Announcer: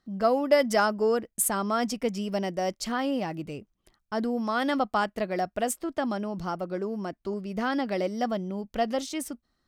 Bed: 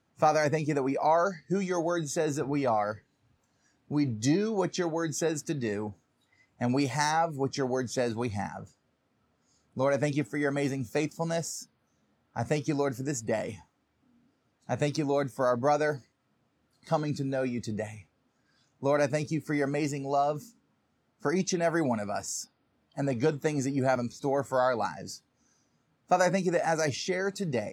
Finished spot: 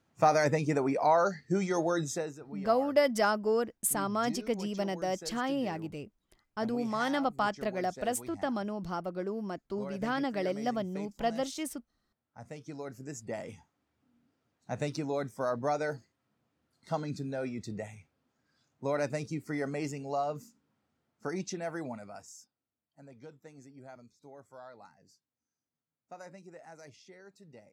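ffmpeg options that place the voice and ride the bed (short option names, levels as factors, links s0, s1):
-filter_complex "[0:a]adelay=2450,volume=0.631[s0];[1:a]volume=3.35,afade=t=out:st=2.05:d=0.28:silence=0.158489,afade=t=in:st=12.55:d=1.29:silence=0.281838,afade=t=out:st=20.84:d=1.86:silence=0.125893[s1];[s0][s1]amix=inputs=2:normalize=0"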